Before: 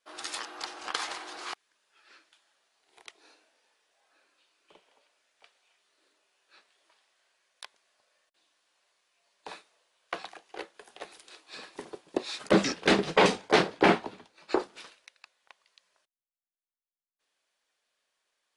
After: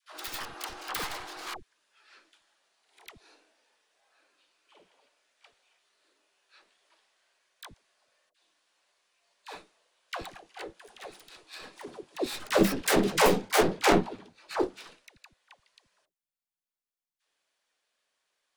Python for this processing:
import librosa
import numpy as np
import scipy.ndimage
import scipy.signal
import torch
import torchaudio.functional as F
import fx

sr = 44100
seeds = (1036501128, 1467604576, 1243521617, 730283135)

y = fx.tracing_dist(x, sr, depth_ms=0.28)
y = fx.dispersion(y, sr, late='lows', ms=90.0, hz=530.0)